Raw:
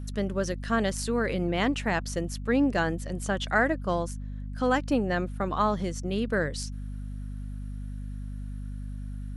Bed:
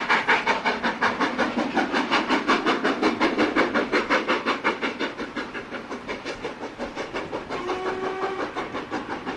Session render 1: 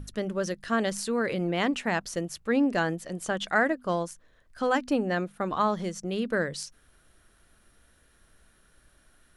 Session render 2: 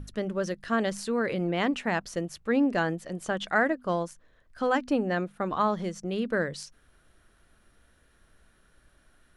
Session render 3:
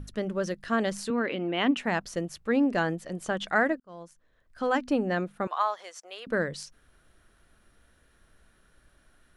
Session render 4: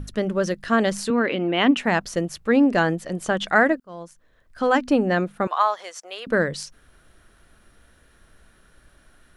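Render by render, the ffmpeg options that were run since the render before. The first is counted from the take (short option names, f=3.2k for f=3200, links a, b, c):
-af "bandreject=f=50:t=h:w=6,bandreject=f=100:t=h:w=6,bandreject=f=150:t=h:w=6,bandreject=f=200:t=h:w=6,bandreject=f=250:t=h:w=6"
-af "highshelf=f=5k:g=-7"
-filter_complex "[0:a]asettb=1/sr,asplit=3[a][b][c];[a]atrim=end=1.104[d];[b]atrim=start=1.1:end=1.77,asetpts=PTS-STARTPTS,afade=t=in:d=0.004:c=qsin,afade=t=out:st=0.666:d=0.004:c=qsin,highpass=260,equalizer=f=260:t=q:w=4:g=9,equalizer=f=500:t=q:w=4:g=-4,equalizer=f=2.9k:t=q:w=4:g=7,equalizer=f=4.7k:t=q:w=4:g=-9,lowpass=f=5.6k:w=0.5412,lowpass=f=5.6k:w=1.3066[e];[c]atrim=start=1.766[f];[d][e]acrossfade=d=0.004:c1=hsin:c2=qsin[g];[g][f]acrossfade=d=0.004:c1=qsin:c2=hsin,asettb=1/sr,asplit=3[h][i][j];[h]atrim=end=5.474[k];[i]atrim=start=5.47:end=6.27,asetpts=PTS-STARTPTS,afade=t=in:d=0.004:c=qsin,afade=t=out:st=0.796:d=0.004:c=qsin,highpass=f=660:w=0.5412,highpass=f=660:w=1.3066[l];[j]atrim=start=6.266[m];[k][l]acrossfade=d=0.004:c1=hsin:c2=qsin[n];[n][m]acrossfade=d=0.004:c1=qsin:c2=hsin,asplit=2[o][p];[o]atrim=end=3.8,asetpts=PTS-STARTPTS,afade=t=out:st=3.796:d=0.004:c=hsin[q];[p]atrim=start=3.8,asetpts=PTS-STARTPTS,afade=t=in:d=1[r];[q][r]concat=n=2:v=0:a=1"
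-af "volume=7dB"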